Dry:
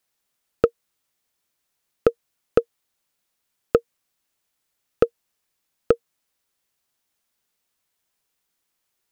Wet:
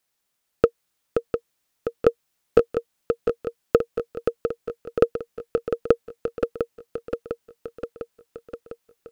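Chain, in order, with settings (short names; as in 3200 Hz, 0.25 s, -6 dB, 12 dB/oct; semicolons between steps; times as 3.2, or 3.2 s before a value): swung echo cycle 0.702 s, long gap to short 3:1, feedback 61%, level -6 dB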